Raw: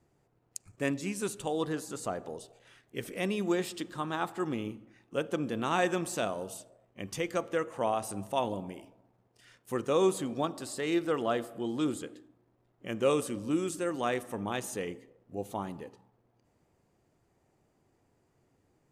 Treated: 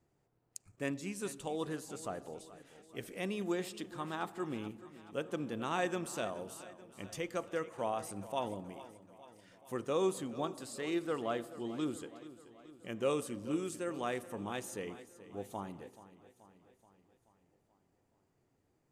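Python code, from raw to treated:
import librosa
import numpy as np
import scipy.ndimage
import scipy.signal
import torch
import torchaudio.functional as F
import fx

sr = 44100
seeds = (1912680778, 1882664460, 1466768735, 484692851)

y = fx.echo_feedback(x, sr, ms=430, feedback_pct=58, wet_db=-16.0)
y = F.gain(torch.from_numpy(y), -6.0).numpy()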